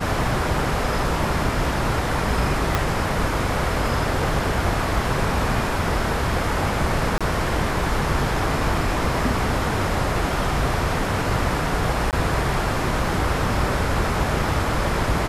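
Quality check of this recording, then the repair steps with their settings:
2.75 pop
7.18–7.21 gap 26 ms
12.11–12.13 gap 18 ms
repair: de-click; interpolate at 7.18, 26 ms; interpolate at 12.11, 18 ms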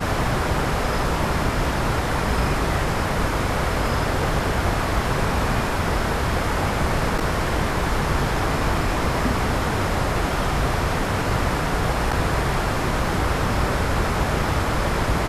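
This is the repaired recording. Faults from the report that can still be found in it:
2.75 pop

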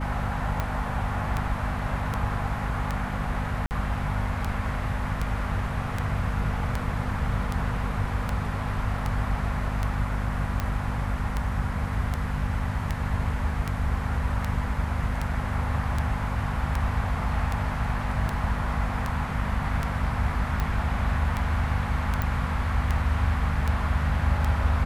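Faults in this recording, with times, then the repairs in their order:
hum 50 Hz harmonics 5 -31 dBFS
tick 78 rpm -14 dBFS
3.66–3.71 gap 49 ms
22.22 pop -14 dBFS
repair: de-click; de-hum 50 Hz, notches 5; interpolate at 3.66, 49 ms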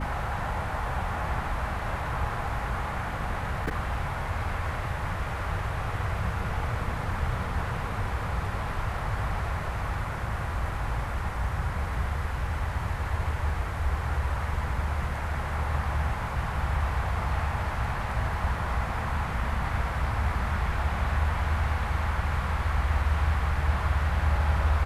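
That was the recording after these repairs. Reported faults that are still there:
none

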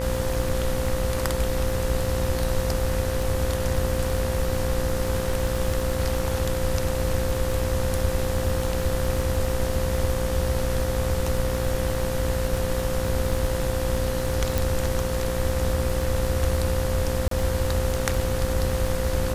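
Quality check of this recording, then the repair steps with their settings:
buzz 60 Hz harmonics 33 -29 dBFS
crackle 24/s -27 dBFS
tone 520 Hz -28 dBFS
14.58 pop
17.28–17.31 gap 33 ms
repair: de-click; de-hum 60 Hz, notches 33; notch 520 Hz, Q 30; interpolate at 17.28, 33 ms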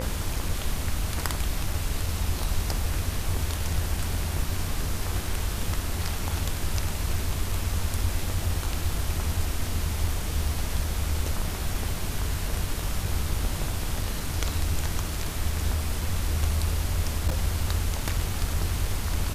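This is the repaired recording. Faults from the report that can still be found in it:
none

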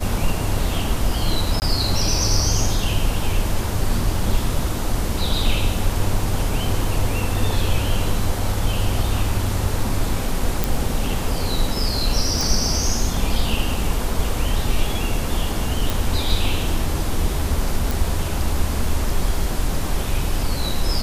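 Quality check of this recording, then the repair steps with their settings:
1.6–1.62 gap 19 ms
10.64 pop
12.41 pop
15.9 pop
17.91 pop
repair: de-click; interpolate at 1.6, 19 ms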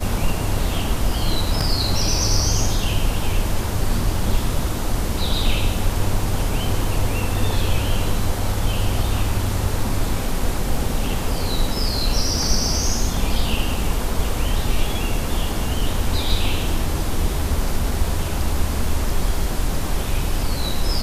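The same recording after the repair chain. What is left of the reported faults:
none

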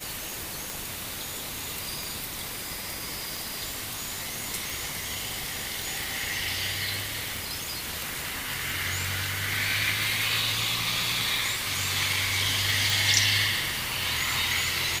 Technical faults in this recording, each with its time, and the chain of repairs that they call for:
tick 45 rpm
2.93 pop
5.82 pop
12.9 pop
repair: de-click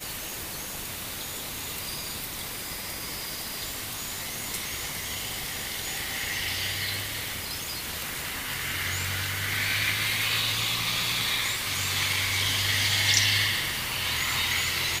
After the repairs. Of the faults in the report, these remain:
none

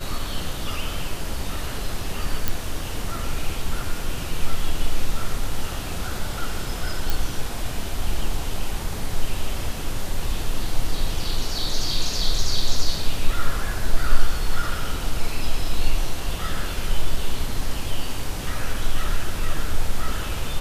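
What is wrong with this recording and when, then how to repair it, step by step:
2.48 pop
7.1 pop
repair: de-click

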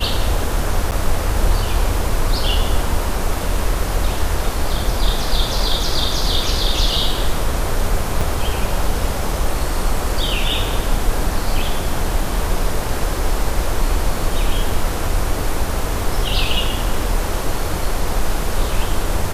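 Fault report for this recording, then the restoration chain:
0.91–0.92 gap 9.2 ms
8.21 gap 4.2 ms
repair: interpolate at 0.91, 9.2 ms; interpolate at 8.21, 4.2 ms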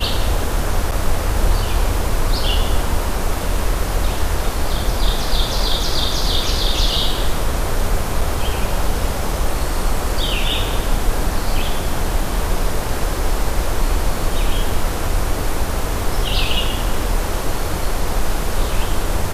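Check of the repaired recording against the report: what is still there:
none

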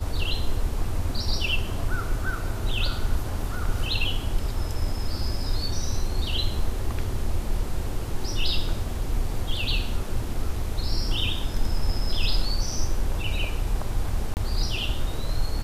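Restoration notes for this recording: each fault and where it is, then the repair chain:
14.34–14.37 gap 29 ms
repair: interpolate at 14.34, 29 ms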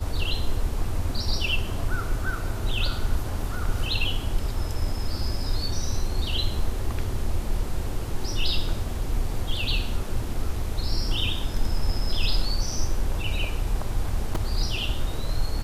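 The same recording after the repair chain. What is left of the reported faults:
none

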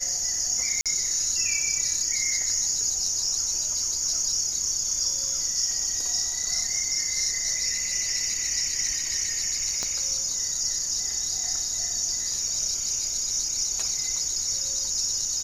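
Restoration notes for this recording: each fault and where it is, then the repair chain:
0.81–0.86 gap 47 ms
9.83 pop -16 dBFS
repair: de-click; interpolate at 0.81, 47 ms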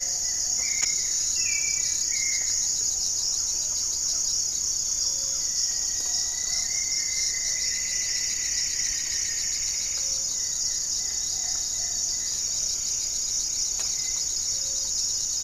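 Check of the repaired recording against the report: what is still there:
9.83 pop

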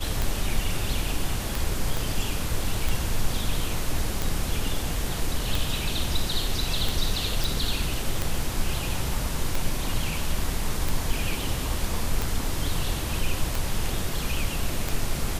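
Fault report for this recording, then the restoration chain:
tick 45 rpm
1.97 pop
7.44 pop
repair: de-click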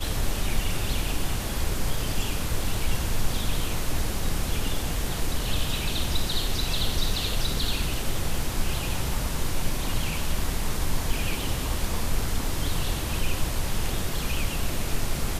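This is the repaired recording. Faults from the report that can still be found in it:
1.97 pop

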